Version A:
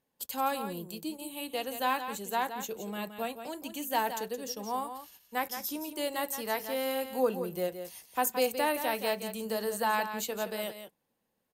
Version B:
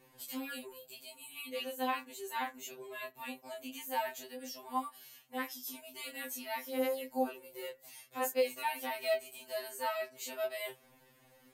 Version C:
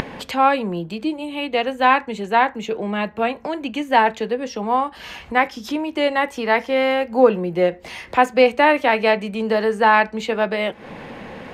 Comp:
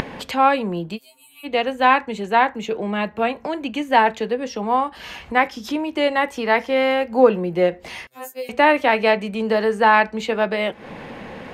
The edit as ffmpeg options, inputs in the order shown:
ffmpeg -i take0.wav -i take1.wav -i take2.wav -filter_complex "[1:a]asplit=2[link_01][link_02];[2:a]asplit=3[link_03][link_04][link_05];[link_03]atrim=end=0.99[link_06];[link_01]atrim=start=0.95:end=1.47[link_07];[link_04]atrim=start=1.43:end=8.072[link_08];[link_02]atrim=start=8.068:end=8.492[link_09];[link_05]atrim=start=8.488[link_10];[link_06][link_07]acrossfade=duration=0.04:curve1=tri:curve2=tri[link_11];[link_11][link_08]acrossfade=duration=0.04:curve1=tri:curve2=tri[link_12];[link_12][link_09]acrossfade=duration=0.004:curve1=hsin:curve2=hsin[link_13];[link_13][link_10]acrossfade=duration=0.004:curve1=hsin:curve2=hsin" out.wav

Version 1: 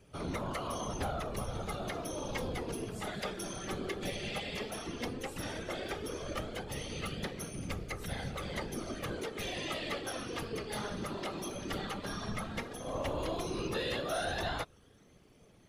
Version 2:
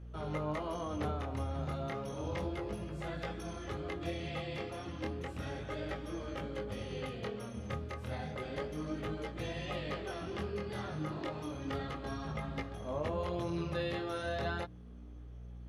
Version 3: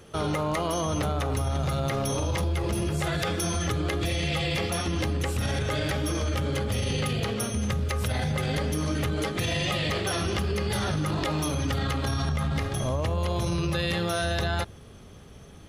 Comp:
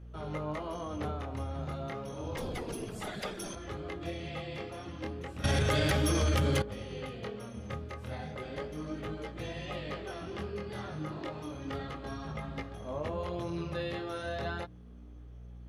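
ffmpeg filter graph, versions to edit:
ffmpeg -i take0.wav -i take1.wav -i take2.wav -filter_complex "[1:a]asplit=3[link_01][link_02][link_03];[link_01]atrim=end=2.372[link_04];[0:a]atrim=start=2.368:end=3.552[link_05];[link_02]atrim=start=3.548:end=5.442[link_06];[2:a]atrim=start=5.438:end=6.622[link_07];[link_03]atrim=start=6.618[link_08];[link_04][link_05]acrossfade=duration=0.004:curve1=hsin:curve2=hsin[link_09];[link_09][link_06]acrossfade=duration=0.004:curve1=hsin:curve2=hsin[link_10];[link_10][link_07]acrossfade=duration=0.004:curve1=hsin:curve2=hsin[link_11];[link_11][link_08]acrossfade=duration=0.004:curve1=hsin:curve2=hsin" out.wav

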